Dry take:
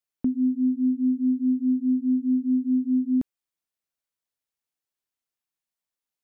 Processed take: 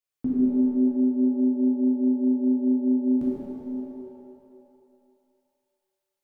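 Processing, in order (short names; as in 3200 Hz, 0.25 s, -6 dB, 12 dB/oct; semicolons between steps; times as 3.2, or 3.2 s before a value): shimmer reverb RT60 2.2 s, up +7 st, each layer -8 dB, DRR -7.5 dB; gain -5 dB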